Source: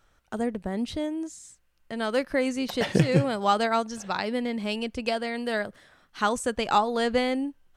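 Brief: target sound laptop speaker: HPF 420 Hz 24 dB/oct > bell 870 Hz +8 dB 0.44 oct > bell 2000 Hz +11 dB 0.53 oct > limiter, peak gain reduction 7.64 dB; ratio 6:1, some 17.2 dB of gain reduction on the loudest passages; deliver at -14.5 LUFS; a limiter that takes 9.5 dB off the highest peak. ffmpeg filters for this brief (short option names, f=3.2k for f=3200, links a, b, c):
-af "acompressor=threshold=-35dB:ratio=6,alimiter=level_in=8dB:limit=-24dB:level=0:latency=1,volume=-8dB,highpass=f=420:w=0.5412,highpass=f=420:w=1.3066,equalizer=f=870:t=o:w=0.44:g=8,equalizer=f=2k:t=o:w=0.53:g=11,volume=29dB,alimiter=limit=-4dB:level=0:latency=1"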